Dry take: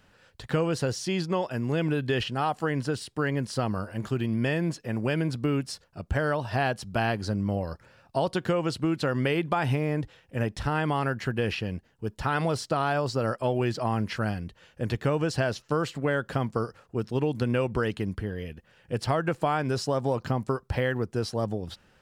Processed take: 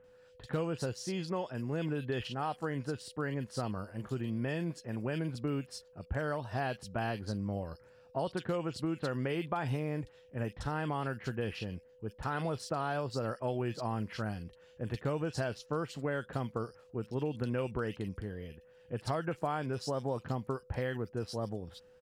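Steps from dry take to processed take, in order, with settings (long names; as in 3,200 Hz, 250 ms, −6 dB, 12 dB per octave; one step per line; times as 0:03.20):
multiband delay without the direct sound lows, highs 40 ms, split 2,400 Hz
steady tone 500 Hz −50 dBFS
level −8 dB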